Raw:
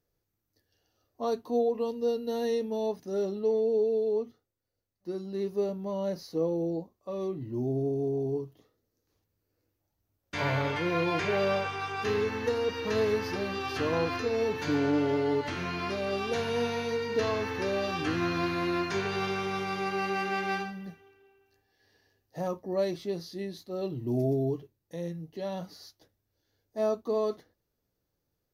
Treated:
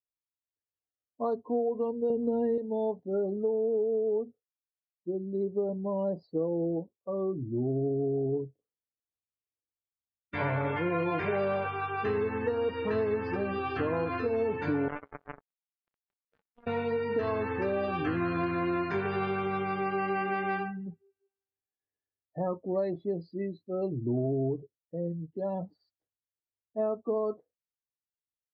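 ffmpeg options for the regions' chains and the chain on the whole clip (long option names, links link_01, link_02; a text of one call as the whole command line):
ffmpeg -i in.wav -filter_complex "[0:a]asettb=1/sr,asplit=3[link_01][link_02][link_03];[link_01]atrim=end=2.104[link_04];[link_02]atrim=start=2.1:end=2.58,asetpts=PTS-STARTPTS,afade=type=in:duration=0.004:curve=qsin,afade=type=out:start_time=0.476:duration=0.004:curve=qsin,lowpass=frequency=2200:poles=1,lowshelf=frequency=470:gain=12,aeval=exprs='val(0)*gte(abs(val(0)),0.0106)':channel_layout=same[link_05];[link_03]atrim=start=2.576[link_06];[link_04][link_05]acrossfade=duration=0.004:curve1=hsin:curve2=qsin[link_07];[link_07][link_06]acrossfade=duration=0.004:curve1=qsin:curve2=hsin,asettb=1/sr,asplit=3[link_08][link_09][link_10];[link_08]atrim=end=14.884[link_11];[link_09]atrim=start=14.88:end=16.67,asetpts=PTS-STARTPTS,afade=type=in:duration=0.004:curve=qsin,afade=type=out:start_time=1.786:duration=0.004:curve=qsin,aeval=exprs='val(0)+0.5*0.01*sgn(val(0))':channel_layout=same,equalizer=frequency=1600:width=1.4:gain=7.5,acrusher=bits=2:mix=0:aa=0.5[link_12];[link_10]atrim=start=16.666[link_13];[link_11][link_12]acrossfade=duration=0.004:curve1=hsin:curve2=qsin[link_14];[link_14][link_13]acrossfade=duration=0.004:curve1=qsin:curve2=hsin,afftdn=noise_reduction=33:noise_floor=-39,acompressor=threshold=-28dB:ratio=6,lowpass=2200,volume=2.5dB" out.wav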